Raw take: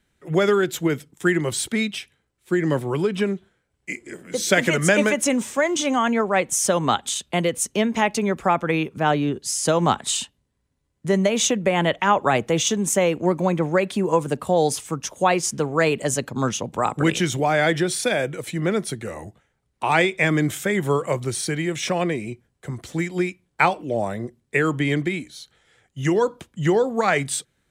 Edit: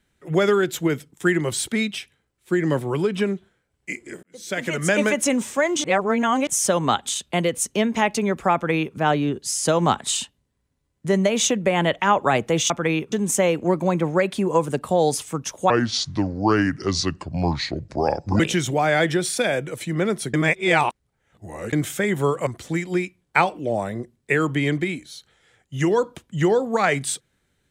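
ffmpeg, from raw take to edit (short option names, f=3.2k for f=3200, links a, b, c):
-filter_complex "[0:a]asplit=11[a][b][c][d][e][f][g][h][i][j][k];[a]atrim=end=4.23,asetpts=PTS-STARTPTS,afade=t=out:st=4.226:d=0.004:c=hsin[l];[b]atrim=start=4.23:end=5.842,asetpts=PTS-STARTPTS,afade=t=in:d=0.91[m];[c]atrim=start=5.838:end=6.472,asetpts=PTS-STARTPTS,areverse[n];[d]atrim=start=6.468:end=12.702[o];[e]atrim=start=8.538:end=8.962[p];[f]atrim=start=12.698:end=15.284[q];[g]atrim=start=15.28:end=17.06,asetpts=PTS-STARTPTS,asetrate=29106,aresample=44100,atrim=end_sample=118936,asetpts=PTS-STARTPTS[r];[h]atrim=start=17.056:end=19.002[s];[i]atrim=start=18.998:end=20.392,asetpts=PTS-STARTPTS,areverse[t];[j]atrim=start=20.388:end=21.132[u];[k]atrim=start=22.708[v];[l][m]concat=n=2:v=0:a=1[w];[w][n]acrossfade=d=0.004:c1=hsin:c2=hsin[x];[x][o]acrossfade=d=0.004:c1=hsin:c2=hsin[y];[y][p]acrossfade=d=0.004:c1=hsin:c2=hsin[z];[z][q]acrossfade=d=0.004:c1=hsin:c2=hsin[aa];[aa][r]acrossfade=d=0.004:c1=hsin:c2=hsin[ab];[ab][s]acrossfade=d=0.004:c1=hsin:c2=hsin[ac];[ac][t]acrossfade=d=0.004:c1=hsin:c2=hsin[ad];[ad][u]acrossfade=d=0.004:c1=hsin:c2=hsin[ae];[ae][v]acrossfade=d=0.004:c1=hsin:c2=hsin"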